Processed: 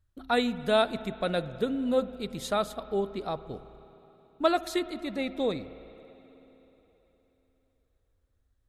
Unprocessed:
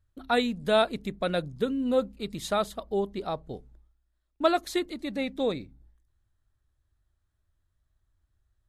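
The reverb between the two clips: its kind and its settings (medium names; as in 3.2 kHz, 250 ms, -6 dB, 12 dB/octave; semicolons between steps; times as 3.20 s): spring tank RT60 3.8 s, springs 53/57 ms, chirp 70 ms, DRR 14.5 dB; trim -1 dB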